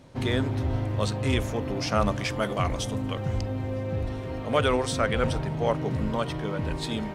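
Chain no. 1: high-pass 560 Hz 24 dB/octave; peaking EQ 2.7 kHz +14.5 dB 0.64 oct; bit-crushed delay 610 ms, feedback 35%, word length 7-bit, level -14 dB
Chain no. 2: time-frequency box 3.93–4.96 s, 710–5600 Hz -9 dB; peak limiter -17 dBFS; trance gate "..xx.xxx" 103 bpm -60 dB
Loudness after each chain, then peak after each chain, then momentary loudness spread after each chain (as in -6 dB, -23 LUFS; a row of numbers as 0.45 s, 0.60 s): -27.5 LUFS, -31.5 LUFS; -6.5 dBFS, -17.0 dBFS; 13 LU, 6 LU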